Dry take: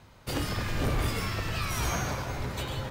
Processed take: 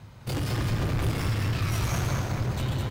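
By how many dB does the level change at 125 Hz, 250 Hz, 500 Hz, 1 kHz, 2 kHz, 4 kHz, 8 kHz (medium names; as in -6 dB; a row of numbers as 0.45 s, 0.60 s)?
+6.5 dB, +3.5 dB, 0.0 dB, -1.0 dB, -1.0 dB, -1.0 dB, -1.0 dB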